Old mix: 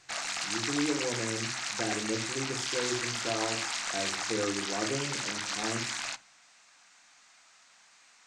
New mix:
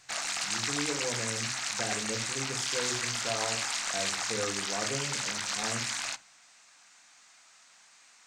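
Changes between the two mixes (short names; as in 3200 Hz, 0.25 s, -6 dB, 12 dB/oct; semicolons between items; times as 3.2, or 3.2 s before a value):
speech: add bell 330 Hz -13 dB 0.33 oct; master: add high shelf 10000 Hz +10.5 dB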